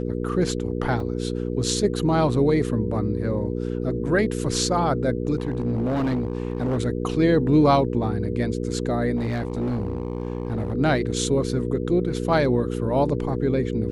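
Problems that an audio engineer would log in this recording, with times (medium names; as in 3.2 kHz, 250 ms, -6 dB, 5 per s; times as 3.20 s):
hum 60 Hz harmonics 8 -27 dBFS
1.00 s: dropout 2.5 ms
5.38–6.78 s: clipped -20 dBFS
9.16–10.73 s: clipped -21.5 dBFS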